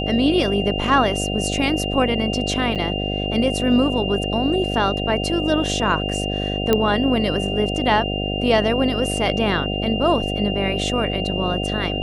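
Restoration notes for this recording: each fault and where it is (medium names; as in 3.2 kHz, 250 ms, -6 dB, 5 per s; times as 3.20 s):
buzz 50 Hz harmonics 15 -25 dBFS
whine 2.8 kHz -27 dBFS
2.75–2.76 s: dropout 7.3 ms
6.73 s: pop -4 dBFS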